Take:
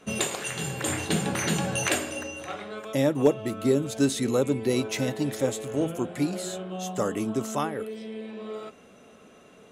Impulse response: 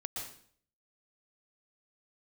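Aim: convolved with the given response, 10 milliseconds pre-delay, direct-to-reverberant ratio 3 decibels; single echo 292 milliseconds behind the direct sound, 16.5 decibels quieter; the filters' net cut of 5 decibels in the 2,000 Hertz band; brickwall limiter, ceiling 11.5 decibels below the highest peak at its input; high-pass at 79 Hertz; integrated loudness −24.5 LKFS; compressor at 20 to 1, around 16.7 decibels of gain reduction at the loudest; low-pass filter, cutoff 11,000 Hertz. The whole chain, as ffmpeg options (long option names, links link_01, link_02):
-filter_complex "[0:a]highpass=79,lowpass=11000,equalizer=frequency=2000:width_type=o:gain=-7,acompressor=threshold=-31dB:ratio=20,alimiter=level_in=7.5dB:limit=-24dB:level=0:latency=1,volume=-7.5dB,aecho=1:1:292:0.15,asplit=2[link_01][link_02];[1:a]atrim=start_sample=2205,adelay=10[link_03];[link_02][link_03]afir=irnorm=-1:irlink=0,volume=-3.5dB[link_04];[link_01][link_04]amix=inputs=2:normalize=0,volume=14dB"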